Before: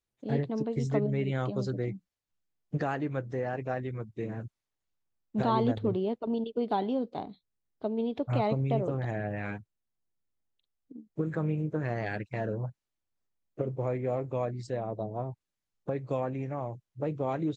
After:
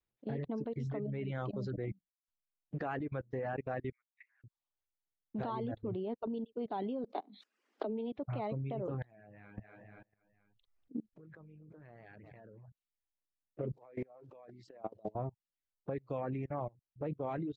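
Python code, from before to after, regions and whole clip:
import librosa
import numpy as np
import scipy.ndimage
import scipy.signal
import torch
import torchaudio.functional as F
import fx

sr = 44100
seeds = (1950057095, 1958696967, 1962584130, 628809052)

y = fx.chain(x, sr, fx.ladder_highpass(hz=1900.0, resonance_pct=75),
    fx.high_shelf(hz=2400.0, db=-5.5), at=(3.92, 4.44))
y = fx.chain(y, sr, fx.steep_highpass(hz=210.0, slope=96),
    fx.low_shelf(hz=310.0, db=-4.5),
    fx.pre_swell(db_per_s=26.0), at=(7.04, 8.17))
y = fx.chain(y, sr, fx.echo_feedback(ms=240, feedback_pct=56, wet_db=-22.0),
    fx.over_compress(threshold_db=-43.0, ratio=-1.0), at=(9.02, 12.68))
y = fx.chain(y, sr, fx.block_float(bits=7),
    fx.highpass(hz=240.0, slope=12),
    fx.over_compress(threshold_db=-38.0, ratio=-0.5), at=(13.73, 15.15))
y = fx.level_steps(y, sr, step_db=18)
y = fx.dereverb_blind(y, sr, rt60_s=0.57)
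y = scipy.signal.sosfilt(scipy.signal.butter(2, 3200.0, 'lowpass', fs=sr, output='sos'), y)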